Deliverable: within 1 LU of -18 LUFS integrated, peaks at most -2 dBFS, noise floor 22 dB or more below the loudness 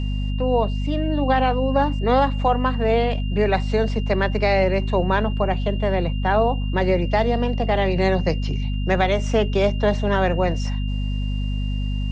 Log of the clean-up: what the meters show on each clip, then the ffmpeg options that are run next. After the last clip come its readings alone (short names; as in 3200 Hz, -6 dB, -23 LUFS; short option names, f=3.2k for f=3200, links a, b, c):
hum 50 Hz; harmonics up to 250 Hz; hum level -21 dBFS; steady tone 2800 Hz; tone level -39 dBFS; loudness -21.5 LUFS; peak -7.0 dBFS; loudness target -18.0 LUFS
-> -af "bandreject=f=50:t=h:w=4,bandreject=f=100:t=h:w=4,bandreject=f=150:t=h:w=4,bandreject=f=200:t=h:w=4,bandreject=f=250:t=h:w=4"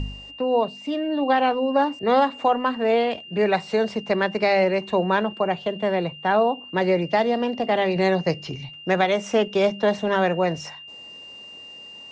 hum none; steady tone 2800 Hz; tone level -39 dBFS
-> -af "bandreject=f=2.8k:w=30"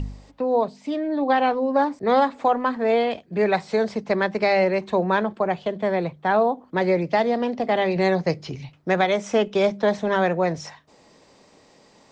steady tone none; loudness -22.5 LUFS; peak -8.5 dBFS; loudness target -18.0 LUFS
-> -af "volume=4.5dB"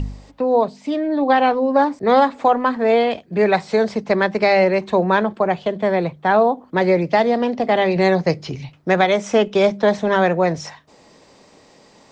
loudness -18.0 LUFS; peak -4.0 dBFS; noise floor -51 dBFS